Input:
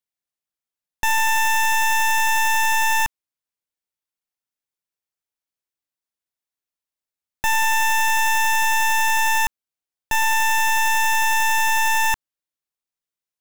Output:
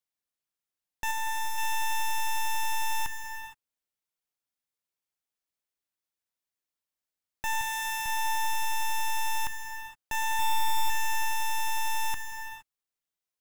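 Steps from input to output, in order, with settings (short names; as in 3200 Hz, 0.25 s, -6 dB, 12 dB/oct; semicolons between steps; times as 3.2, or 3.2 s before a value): 1.11–1.58 notch 2900 Hz, Q 6.1; limiter -27 dBFS, peak gain reduction 12 dB; 7.61–8.06 HPF 1100 Hz 12 dB/oct; 10.39–10.9 comb 0.9 ms, depth 80%; non-linear reverb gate 0.49 s flat, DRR 6.5 dB; gain -2 dB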